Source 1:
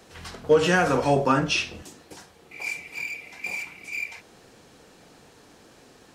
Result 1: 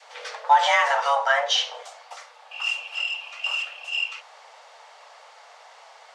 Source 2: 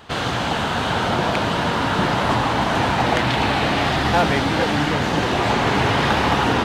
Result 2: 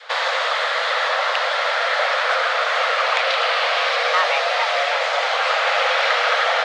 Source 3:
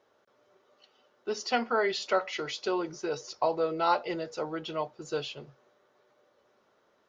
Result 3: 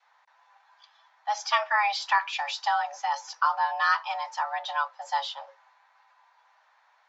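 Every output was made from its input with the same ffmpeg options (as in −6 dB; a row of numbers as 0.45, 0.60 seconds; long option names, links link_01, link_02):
-filter_complex "[0:a]lowpass=5400,bass=frequency=250:gain=-5,treble=frequency=4000:gain=-1,asplit=2[link_01][link_02];[link_02]alimiter=limit=-18.5dB:level=0:latency=1:release=349,volume=-2dB[link_03];[link_01][link_03]amix=inputs=2:normalize=0,afreqshift=410,adynamicequalizer=threshold=0.0224:dfrequency=1000:dqfactor=2.2:tfrequency=1000:tqfactor=2.2:attack=5:release=100:ratio=0.375:range=3:mode=cutabove:tftype=bell"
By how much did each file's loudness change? +2.0, +1.0, +4.0 LU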